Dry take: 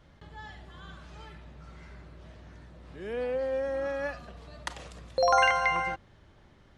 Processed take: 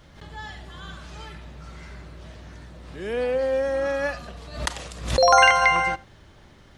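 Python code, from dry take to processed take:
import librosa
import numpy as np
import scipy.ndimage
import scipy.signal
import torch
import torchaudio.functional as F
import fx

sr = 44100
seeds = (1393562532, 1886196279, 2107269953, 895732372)

p1 = fx.high_shelf(x, sr, hz=3700.0, db=7.5)
p2 = p1 + fx.echo_single(p1, sr, ms=83, db=-23.0, dry=0)
p3 = fx.pre_swell(p2, sr, db_per_s=100.0)
y = p3 * 10.0 ** (6.5 / 20.0)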